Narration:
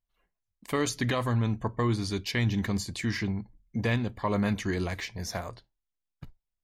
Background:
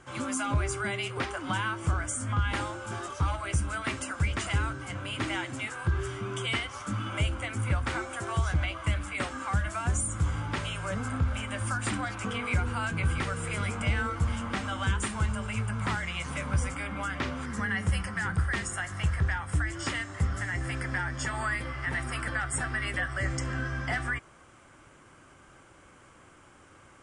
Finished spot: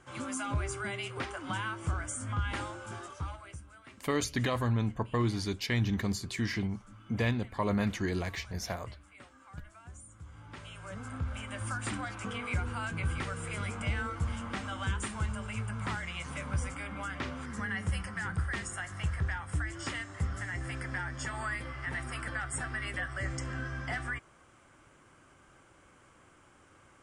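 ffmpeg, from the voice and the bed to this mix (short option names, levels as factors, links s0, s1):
-filter_complex "[0:a]adelay=3350,volume=0.75[s0];[1:a]volume=3.76,afade=t=out:st=2.81:d=0.82:silence=0.149624,afade=t=in:st=10.28:d=1.41:silence=0.149624[s1];[s0][s1]amix=inputs=2:normalize=0"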